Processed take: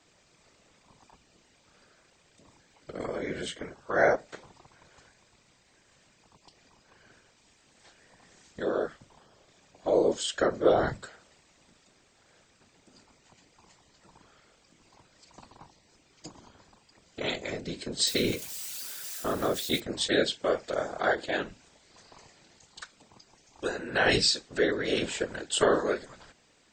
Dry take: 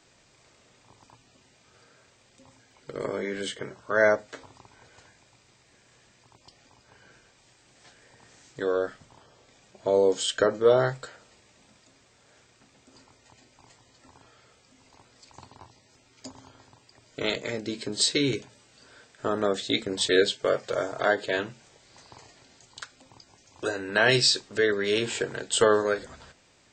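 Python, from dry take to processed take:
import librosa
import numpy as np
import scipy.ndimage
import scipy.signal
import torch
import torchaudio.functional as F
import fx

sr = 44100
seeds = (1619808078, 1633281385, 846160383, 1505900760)

y = fx.crossing_spikes(x, sr, level_db=-28.0, at=(18.07, 19.8))
y = fx.whisperise(y, sr, seeds[0])
y = y * 10.0 ** (-3.0 / 20.0)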